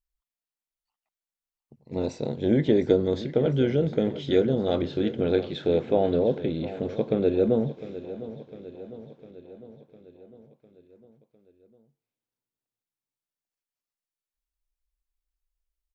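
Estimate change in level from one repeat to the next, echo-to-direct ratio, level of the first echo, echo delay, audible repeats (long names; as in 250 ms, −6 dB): −4.5 dB, −12.5 dB, −14.5 dB, 704 ms, 5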